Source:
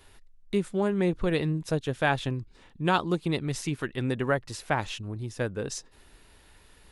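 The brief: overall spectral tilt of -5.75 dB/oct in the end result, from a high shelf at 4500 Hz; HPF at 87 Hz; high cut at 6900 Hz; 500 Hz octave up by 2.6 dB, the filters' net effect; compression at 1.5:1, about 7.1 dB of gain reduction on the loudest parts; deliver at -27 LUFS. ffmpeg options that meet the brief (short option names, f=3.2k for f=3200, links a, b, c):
-af "highpass=87,lowpass=6.9k,equalizer=f=500:t=o:g=3.5,highshelf=f=4.5k:g=-7,acompressor=threshold=-40dB:ratio=1.5,volume=8dB"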